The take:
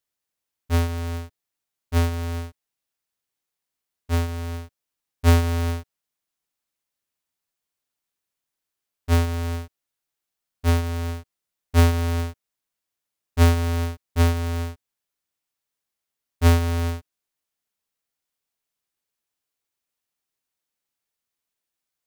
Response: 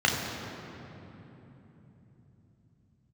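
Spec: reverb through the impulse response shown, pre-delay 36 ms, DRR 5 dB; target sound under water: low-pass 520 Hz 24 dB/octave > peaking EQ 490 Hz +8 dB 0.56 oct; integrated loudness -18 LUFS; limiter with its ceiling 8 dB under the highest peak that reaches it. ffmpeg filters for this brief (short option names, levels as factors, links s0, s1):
-filter_complex "[0:a]alimiter=limit=0.112:level=0:latency=1,asplit=2[s0][s1];[1:a]atrim=start_sample=2205,adelay=36[s2];[s1][s2]afir=irnorm=-1:irlink=0,volume=0.0944[s3];[s0][s3]amix=inputs=2:normalize=0,lowpass=f=520:w=0.5412,lowpass=f=520:w=1.3066,equalizer=f=490:t=o:w=0.56:g=8,volume=2.37"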